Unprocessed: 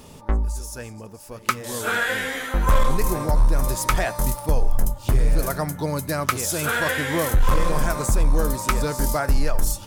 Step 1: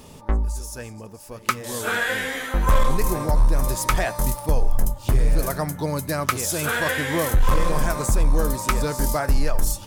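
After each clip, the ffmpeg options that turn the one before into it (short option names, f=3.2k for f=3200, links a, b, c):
-af "bandreject=f=1.4k:w=28"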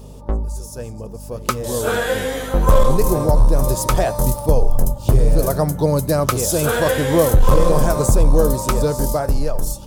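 -af "equalizer=f=125:t=o:w=1:g=5,equalizer=f=500:t=o:w=1:g=7,equalizer=f=2k:t=o:w=1:g=-9,aeval=exprs='val(0)+0.0158*(sin(2*PI*50*n/s)+sin(2*PI*2*50*n/s)/2+sin(2*PI*3*50*n/s)/3+sin(2*PI*4*50*n/s)/4+sin(2*PI*5*50*n/s)/5)':c=same,dynaudnorm=f=140:g=17:m=11.5dB,volume=-1dB"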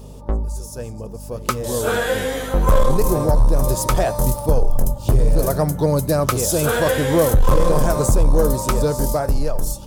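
-af "asoftclip=type=tanh:threshold=-5.5dB"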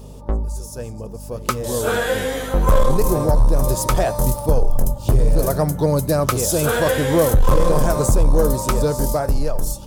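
-af anull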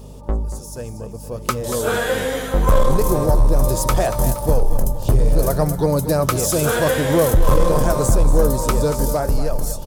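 -af "aecho=1:1:234|468|702|936:0.251|0.103|0.0422|0.0173"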